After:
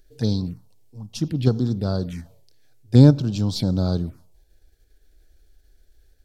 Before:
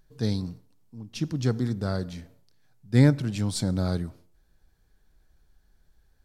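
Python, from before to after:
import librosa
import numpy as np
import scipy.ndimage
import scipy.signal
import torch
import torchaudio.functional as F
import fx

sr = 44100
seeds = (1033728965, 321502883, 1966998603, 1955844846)

p1 = fx.level_steps(x, sr, step_db=21)
p2 = x + F.gain(torch.from_numpy(p1), -3.0).numpy()
p3 = fx.env_phaser(p2, sr, low_hz=160.0, high_hz=2000.0, full_db=-22.5)
y = F.gain(torch.from_numpy(p3), 4.0).numpy()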